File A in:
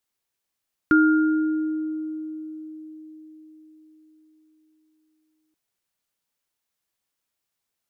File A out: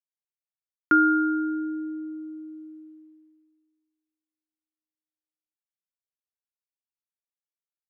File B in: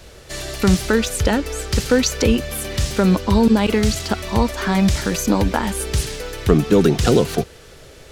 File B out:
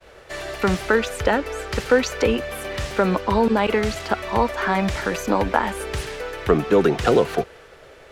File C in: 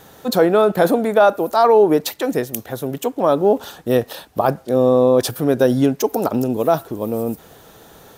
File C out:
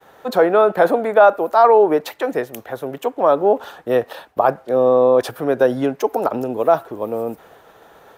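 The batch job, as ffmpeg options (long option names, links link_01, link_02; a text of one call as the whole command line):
ffmpeg -i in.wav -filter_complex "[0:a]acrossover=split=410 2600:gain=0.251 1 0.2[link_01][link_02][link_03];[link_01][link_02][link_03]amix=inputs=3:normalize=0,agate=range=-33dB:threshold=-46dB:ratio=3:detection=peak,volume=3dB" out.wav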